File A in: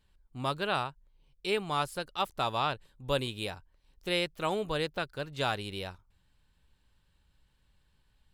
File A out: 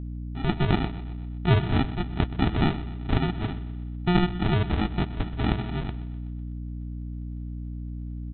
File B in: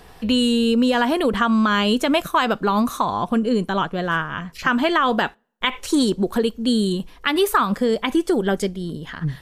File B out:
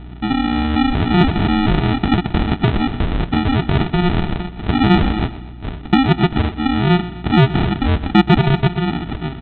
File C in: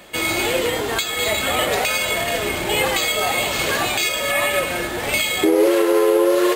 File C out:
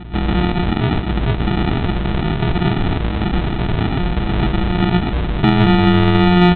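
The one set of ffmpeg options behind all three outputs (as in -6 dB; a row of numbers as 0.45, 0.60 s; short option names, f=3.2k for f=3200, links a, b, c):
-af "acompressor=threshold=-18dB:ratio=6,alimiter=limit=-15.5dB:level=0:latency=1:release=41,highpass=300,equalizer=f=360:t=q:w=4:g=7,equalizer=f=520:t=q:w=4:g=-8,equalizer=f=800:t=q:w=4:g=-9,lowpass=f=2.5k:w=0.5412,lowpass=f=2.5k:w=1.3066,aresample=8000,acrusher=samples=15:mix=1:aa=0.000001,aresample=44100,acontrast=45,aecho=1:1:125|250|375|500|625:0.168|0.0907|0.049|0.0264|0.0143,aeval=exprs='val(0)+0.0126*(sin(2*PI*60*n/s)+sin(2*PI*2*60*n/s)/2+sin(2*PI*3*60*n/s)/3+sin(2*PI*4*60*n/s)/4+sin(2*PI*5*60*n/s)/5)':c=same,volume=5.5dB"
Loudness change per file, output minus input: +5.0, +3.5, +1.5 LU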